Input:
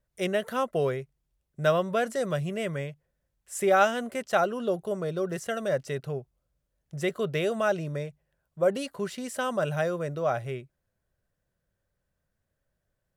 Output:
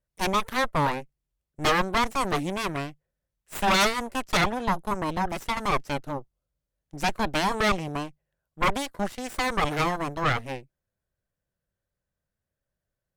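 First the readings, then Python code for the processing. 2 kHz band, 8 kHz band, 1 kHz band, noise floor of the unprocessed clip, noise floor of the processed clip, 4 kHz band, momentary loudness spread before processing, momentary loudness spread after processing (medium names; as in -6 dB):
+5.5 dB, +5.0 dB, +5.5 dB, -81 dBFS, under -85 dBFS, +9.5 dB, 11 LU, 11 LU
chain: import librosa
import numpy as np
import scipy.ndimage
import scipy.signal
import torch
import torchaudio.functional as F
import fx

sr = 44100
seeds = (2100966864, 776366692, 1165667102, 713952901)

y = fx.cheby_harmonics(x, sr, harmonics=(3, 5, 8), levels_db=(-11, -26, -8), full_scale_db=-8.5)
y = 10.0 ** (-18.5 / 20.0) * np.tanh(y / 10.0 ** (-18.5 / 20.0))
y = y * librosa.db_to_amplitude(2.0)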